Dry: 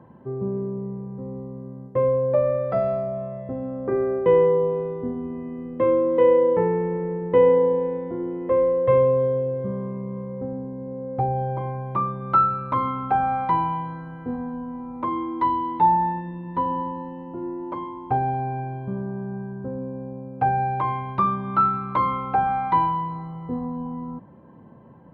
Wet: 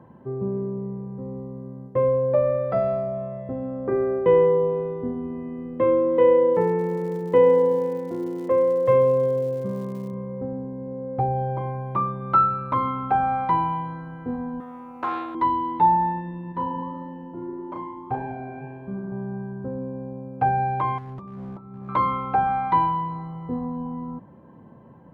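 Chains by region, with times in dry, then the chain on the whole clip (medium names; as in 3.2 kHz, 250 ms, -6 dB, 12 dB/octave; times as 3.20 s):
6.54–10.12 s: high-pass 110 Hz + crackle 170 per s -40 dBFS
14.60–15.35 s: tilt EQ +3.5 dB/octave + loudspeaker Doppler distortion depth 0.2 ms
16.52–19.12 s: flange 1.7 Hz, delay 3.9 ms, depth 7.8 ms, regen -73% + doubling 35 ms -4 dB
20.98–21.89 s: compression 16:1, threshold -28 dBFS + boxcar filter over 31 samples + hard clipper -32.5 dBFS
whole clip: none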